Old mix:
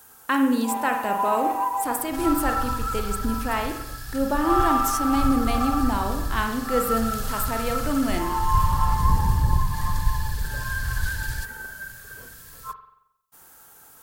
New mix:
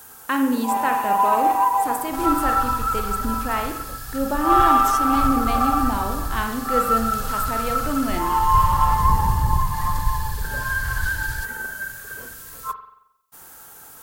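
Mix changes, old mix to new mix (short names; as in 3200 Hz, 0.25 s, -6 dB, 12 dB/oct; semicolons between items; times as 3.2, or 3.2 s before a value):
speech: add high shelf 7600 Hz -5.5 dB; first sound +6.5 dB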